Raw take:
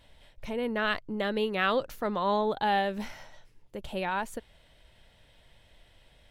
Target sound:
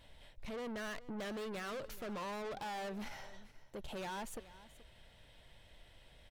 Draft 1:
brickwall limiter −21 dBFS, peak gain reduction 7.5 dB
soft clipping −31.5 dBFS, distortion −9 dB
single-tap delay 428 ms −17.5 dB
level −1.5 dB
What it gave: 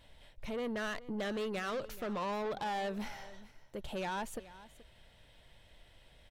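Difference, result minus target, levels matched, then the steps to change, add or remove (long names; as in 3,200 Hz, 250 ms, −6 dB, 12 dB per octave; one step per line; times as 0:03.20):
soft clipping: distortion −5 dB
change: soft clipping −39 dBFS, distortion −5 dB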